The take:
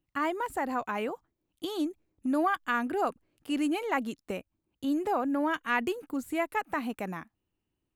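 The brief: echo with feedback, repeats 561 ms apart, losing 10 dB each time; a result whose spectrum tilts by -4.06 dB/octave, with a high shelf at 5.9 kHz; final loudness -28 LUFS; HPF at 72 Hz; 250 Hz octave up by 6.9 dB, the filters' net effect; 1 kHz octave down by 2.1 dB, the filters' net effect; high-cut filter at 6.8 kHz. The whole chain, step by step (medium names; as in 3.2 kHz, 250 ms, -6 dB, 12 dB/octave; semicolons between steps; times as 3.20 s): high-pass 72 Hz; low-pass 6.8 kHz; peaking EQ 250 Hz +8.5 dB; peaking EQ 1 kHz -3.5 dB; treble shelf 5.9 kHz +5.5 dB; feedback delay 561 ms, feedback 32%, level -10 dB; trim -0.5 dB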